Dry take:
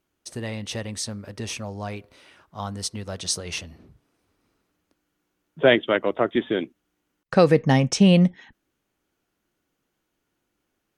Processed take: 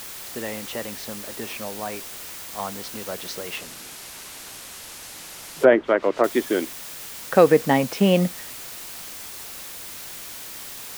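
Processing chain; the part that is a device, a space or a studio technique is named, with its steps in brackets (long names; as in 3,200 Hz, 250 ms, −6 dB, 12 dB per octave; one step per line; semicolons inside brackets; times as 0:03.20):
wax cylinder (band-pass filter 270–2,500 Hz; tape wow and flutter; white noise bed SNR 12 dB)
0:03.57–0:06.24: treble cut that deepens with the level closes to 1,500 Hz, closed at −16 dBFS
level +3 dB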